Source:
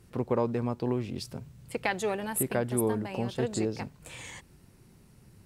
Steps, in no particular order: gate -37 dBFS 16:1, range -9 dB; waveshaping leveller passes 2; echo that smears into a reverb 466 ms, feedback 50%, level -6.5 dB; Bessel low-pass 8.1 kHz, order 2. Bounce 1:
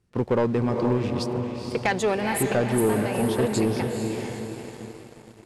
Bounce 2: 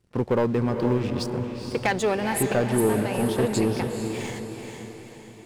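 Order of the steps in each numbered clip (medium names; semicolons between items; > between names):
gate > echo that smears into a reverb > waveshaping leveller > Bessel low-pass; Bessel low-pass > waveshaping leveller > gate > echo that smears into a reverb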